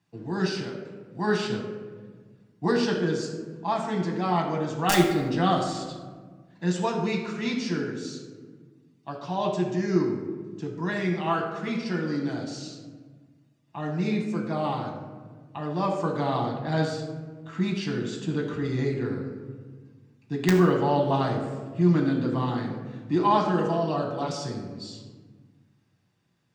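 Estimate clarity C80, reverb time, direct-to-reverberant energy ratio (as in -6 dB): 6.5 dB, 1.5 s, -1.0 dB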